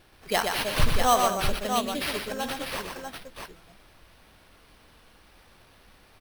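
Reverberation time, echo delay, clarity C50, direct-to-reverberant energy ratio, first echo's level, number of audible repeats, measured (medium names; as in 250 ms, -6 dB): no reverb, 54 ms, no reverb, no reverb, -13.5 dB, 4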